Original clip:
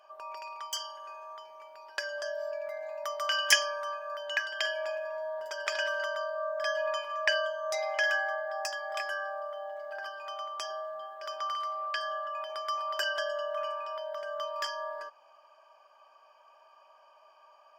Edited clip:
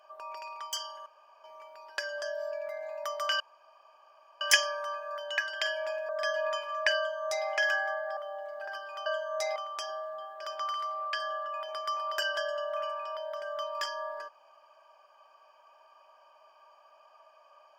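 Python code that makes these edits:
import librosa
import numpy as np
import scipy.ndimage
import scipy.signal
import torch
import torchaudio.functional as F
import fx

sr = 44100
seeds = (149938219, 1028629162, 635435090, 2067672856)

y = fx.edit(x, sr, fx.room_tone_fill(start_s=1.06, length_s=0.38),
    fx.insert_room_tone(at_s=3.4, length_s=1.01),
    fx.cut(start_s=5.08, length_s=1.42),
    fx.duplicate(start_s=7.38, length_s=0.5, to_s=10.37),
    fx.cut(start_s=8.58, length_s=0.9), tone=tone)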